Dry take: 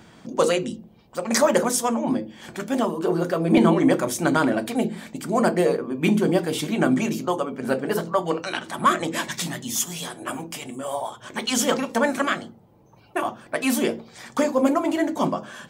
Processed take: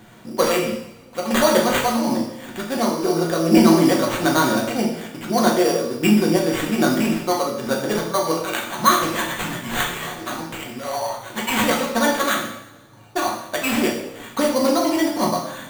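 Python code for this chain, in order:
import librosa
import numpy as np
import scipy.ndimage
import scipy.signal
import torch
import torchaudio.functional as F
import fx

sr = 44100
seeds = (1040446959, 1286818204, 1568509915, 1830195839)

y = fx.sample_hold(x, sr, seeds[0], rate_hz=5200.0, jitter_pct=0)
y = fx.rev_double_slope(y, sr, seeds[1], early_s=0.69, late_s=1.8, knee_db=-18, drr_db=-1.0)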